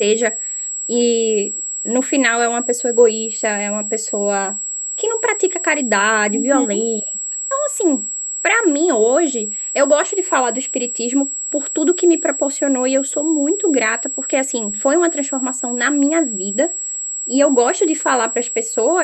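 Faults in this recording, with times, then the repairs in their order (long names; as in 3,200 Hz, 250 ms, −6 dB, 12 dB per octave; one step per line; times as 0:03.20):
whistle 7,700 Hz −22 dBFS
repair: notch filter 7,700 Hz, Q 30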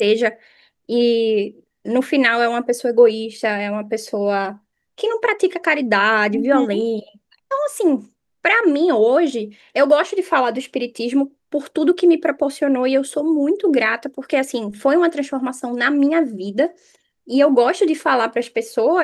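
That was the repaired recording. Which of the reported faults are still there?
none of them is left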